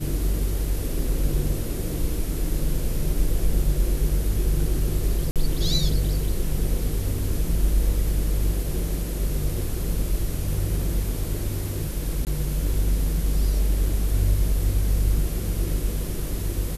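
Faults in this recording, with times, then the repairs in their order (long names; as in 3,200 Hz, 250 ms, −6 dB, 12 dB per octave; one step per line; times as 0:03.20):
0:05.31–0:05.36: drop-out 47 ms
0:12.25–0:12.27: drop-out 18 ms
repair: repair the gap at 0:05.31, 47 ms
repair the gap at 0:12.25, 18 ms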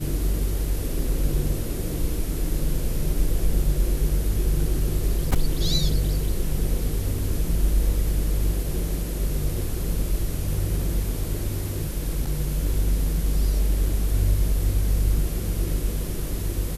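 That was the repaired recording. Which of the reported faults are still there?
none of them is left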